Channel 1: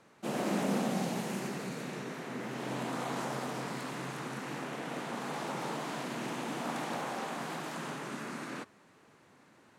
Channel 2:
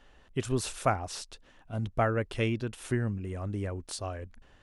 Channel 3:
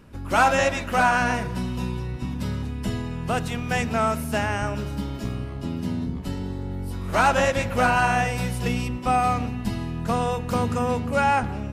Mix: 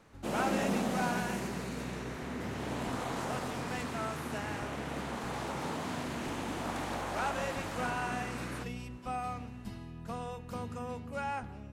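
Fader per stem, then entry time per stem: -0.5 dB, off, -16.0 dB; 0.00 s, off, 0.00 s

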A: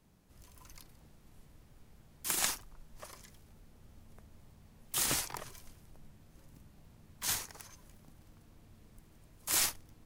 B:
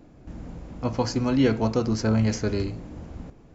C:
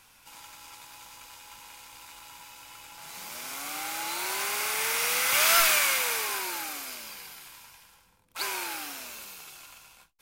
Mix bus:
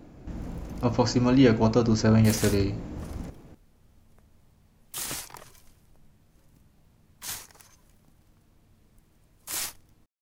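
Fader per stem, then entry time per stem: -2.0 dB, +2.0 dB, off; 0.00 s, 0.00 s, off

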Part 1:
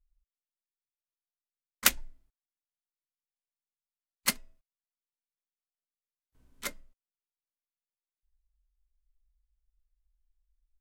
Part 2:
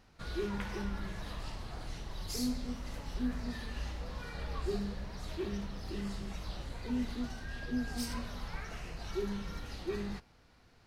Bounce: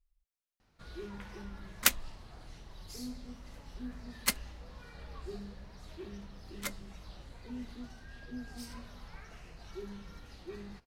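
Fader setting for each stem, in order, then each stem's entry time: -2.0, -8.0 dB; 0.00, 0.60 s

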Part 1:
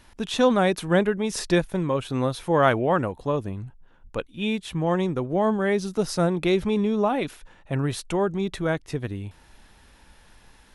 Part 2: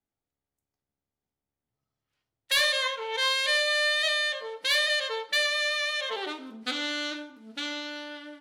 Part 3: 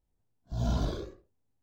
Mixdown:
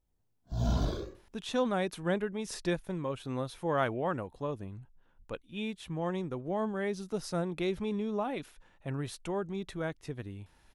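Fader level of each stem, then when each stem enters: -10.5 dB, off, 0.0 dB; 1.15 s, off, 0.00 s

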